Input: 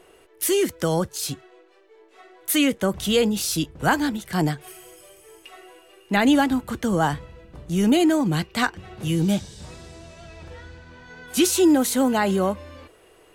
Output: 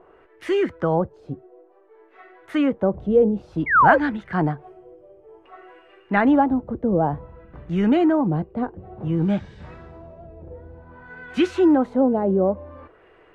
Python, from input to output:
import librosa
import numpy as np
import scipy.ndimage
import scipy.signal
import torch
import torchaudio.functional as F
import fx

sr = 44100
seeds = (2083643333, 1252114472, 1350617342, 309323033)

y = fx.spec_paint(x, sr, seeds[0], shape='fall', start_s=3.66, length_s=0.32, low_hz=490.0, high_hz=2300.0, level_db=-17.0)
y = fx.filter_lfo_lowpass(y, sr, shape='sine', hz=0.55, low_hz=520.0, high_hz=1900.0, q=1.6)